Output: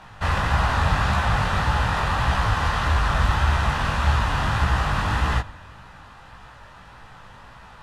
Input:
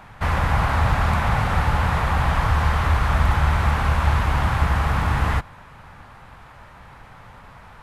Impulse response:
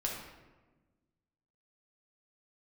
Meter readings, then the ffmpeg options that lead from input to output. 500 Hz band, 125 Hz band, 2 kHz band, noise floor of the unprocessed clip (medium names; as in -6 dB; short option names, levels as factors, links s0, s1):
-1.5 dB, -2.5 dB, +0.5 dB, -45 dBFS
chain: -filter_complex "[0:a]highshelf=f=2400:g=10.5,acrusher=bits=8:mix=0:aa=0.000001,asplit=2[s0][s1];[1:a]atrim=start_sample=2205[s2];[s1][s2]afir=irnorm=-1:irlink=0,volume=0.119[s3];[s0][s3]amix=inputs=2:normalize=0,flanger=delay=15.5:depth=6.8:speed=1.7,bandreject=f=2200:w=7.5,adynamicsmooth=sensitivity=1.5:basefreq=6700"